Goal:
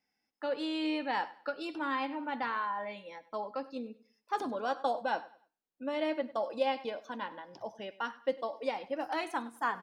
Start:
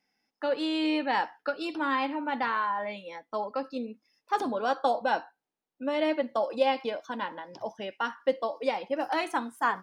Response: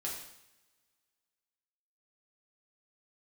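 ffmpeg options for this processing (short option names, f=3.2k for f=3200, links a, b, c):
-filter_complex "[0:a]equalizer=f=65:t=o:w=0.29:g=9.5,asplit=2[a][b];[b]aecho=0:1:99|198|297:0.112|0.0359|0.0115[c];[a][c]amix=inputs=2:normalize=0,volume=-5.5dB"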